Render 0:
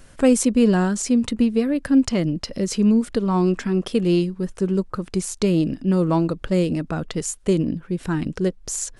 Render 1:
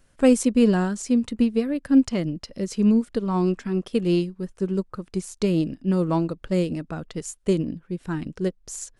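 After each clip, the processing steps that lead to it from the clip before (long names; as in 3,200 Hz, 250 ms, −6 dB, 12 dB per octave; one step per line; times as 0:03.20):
expander for the loud parts 1.5 to 1, over −38 dBFS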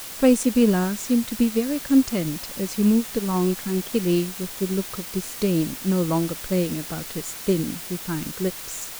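bit-depth reduction 6 bits, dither triangular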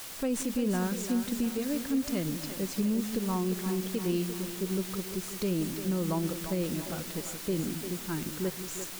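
stylus tracing distortion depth 0.038 ms
brickwall limiter −16 dBFS, peak gain reduction 10 dB
echo with a time of its own for lows and highs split 380 Hz, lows 175 ms, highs 345 ms, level −9 dB
level −6 dB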